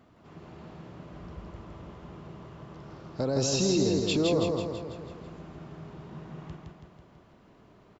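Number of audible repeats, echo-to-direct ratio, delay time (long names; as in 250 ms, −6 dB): 6, −1.5 dB, 164 ms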